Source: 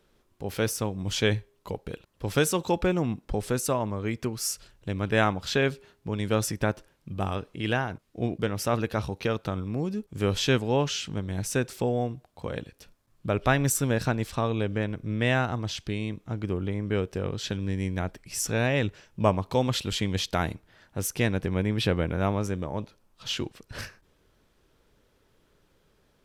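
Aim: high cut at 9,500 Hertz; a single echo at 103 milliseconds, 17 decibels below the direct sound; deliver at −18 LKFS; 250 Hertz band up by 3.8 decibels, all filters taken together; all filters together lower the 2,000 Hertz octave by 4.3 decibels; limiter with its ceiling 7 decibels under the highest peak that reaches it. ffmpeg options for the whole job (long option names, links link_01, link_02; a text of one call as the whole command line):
ffmpeg -i in.wav -af "lowpass=9500,equalizer=frequency=250:width_type=o:gain=5,equalizer=frequency=2000:width_type=o:gain=-6,alimiter=limit=-14.5dB:level=0:latency=1,aecho=1:1:103:0.141,volume=11dB" out.wav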